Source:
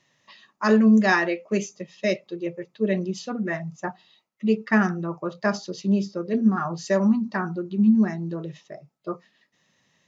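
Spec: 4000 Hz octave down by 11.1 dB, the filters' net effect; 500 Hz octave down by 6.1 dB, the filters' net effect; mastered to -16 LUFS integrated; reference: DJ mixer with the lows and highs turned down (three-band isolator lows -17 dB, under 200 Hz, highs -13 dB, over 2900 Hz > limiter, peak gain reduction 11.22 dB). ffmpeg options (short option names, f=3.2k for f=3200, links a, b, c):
-filter_complex "[0:a]acrossover=split=200 2900:gain=0.141 1 0.224[a][b][c];[a][b][c]amix=inputs=3:normalize=0,equalizer=f=500:t=o:g=-7.5,equalizer=f=4k:t=o:g=-4,volume=16.5dB,alimiter=limit=-5dB:level=0:latency=1"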